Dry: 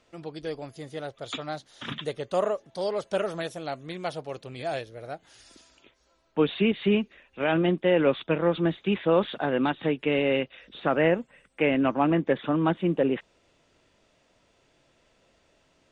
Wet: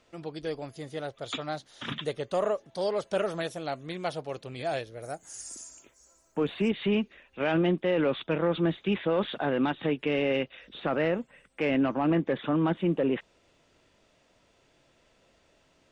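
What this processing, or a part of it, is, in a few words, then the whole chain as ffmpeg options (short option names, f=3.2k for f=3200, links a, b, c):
soft clipper into limiter: -filter_complex "[0:a]asoftclip=type=tanh:threshold=-12dB,alimiter=limit=-18.5dB:level=0:latency=1:release=15,asettb=1/sr,asplit=3[a][b][c];[a]atrim=end=5.024[d];[b]atrim=start=5.02:end=6.7,asetpts=PTS-STARTPTS,afade=t=in:d=0.004:c=qsin,afade=t=out:st=1.676:d=0.004:c=qsin,highshelf=f=5.2k:t=q:w=3:g=13[e];[c]atrim=start=6.696[f];[d][e]acrossfade=d=0.004:c1=hsin:c2=qsin[g];[g][f]acrossfade=d=0.004:c1=qsin:c2=hsin"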